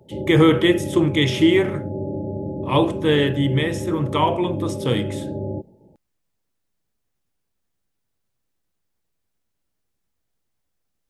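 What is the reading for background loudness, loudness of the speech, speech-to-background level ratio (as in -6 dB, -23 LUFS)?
-28.5 LUFS, -19.5 LUFS, 9.0 dB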